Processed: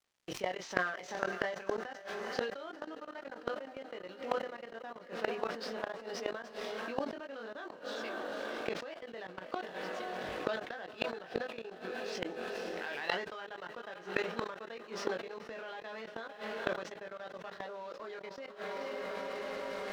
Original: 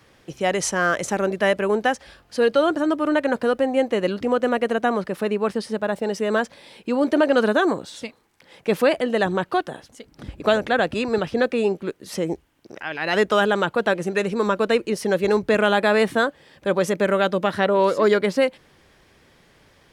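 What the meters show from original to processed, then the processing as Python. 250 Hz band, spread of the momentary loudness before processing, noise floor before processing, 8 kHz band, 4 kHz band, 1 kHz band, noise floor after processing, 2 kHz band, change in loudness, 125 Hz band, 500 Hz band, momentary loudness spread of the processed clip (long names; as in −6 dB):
−22.0 dB, 11 LU, −57 dBFS, −18.5 dB, −14.0 dB, −16.0 dB, −52 dBFS, −14.5 dB, −18.5 dB, −21.0 dB, −18.5 dB, 9 LU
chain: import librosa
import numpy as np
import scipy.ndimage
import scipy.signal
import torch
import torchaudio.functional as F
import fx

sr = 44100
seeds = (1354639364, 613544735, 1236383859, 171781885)

p1 = fx.cvsd(x, sr, bps=64000)
p2 = fx.highpass(p1, sr, hz=680.0, slope=6)
p3 = fx.quant_float(p2, sr, bits=2)
p4 = p2 + (p3 * 10.0 ** (-9.0 / 20.0))
p5 = scipy.signal.sosfilt(scipy.signal.butter(4, 5400.0, 'lowpass', fs=sr, output='sos'), p4)
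p6 = fx.doubler(p5, sr, ms=22.0, db=-3.5)
p7 = p6 + fx.echo_diffused(p6, sr, ms=501, feedback_pct=62, wet_db=-11.5, dry=0)
p8 = np.sign(p7) * np.maximum(np.abs(p7) - 10.0 ** (-49.0 / 20.0), 0.0)
p9 = fx.level_steps(p8, sr, step_db=22)
p10 = fx.gate_flip(p9, sr, shuts_db=-22.0, range_db=-26)
p11 = fx.sustainer(p10, sr, db_per_s=75.0)
y = p11 * 10.0 ** (4.0 / 20.0)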